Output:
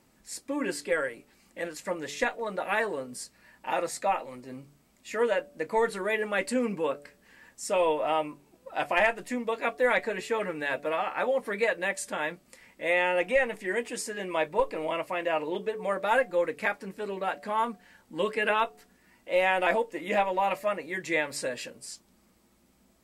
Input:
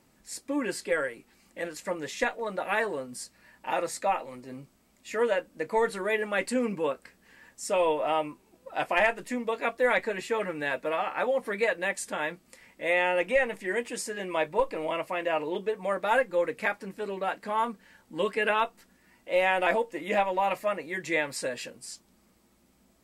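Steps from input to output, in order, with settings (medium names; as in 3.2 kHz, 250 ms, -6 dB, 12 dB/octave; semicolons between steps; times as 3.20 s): de-hum 144.3 Hz, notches 5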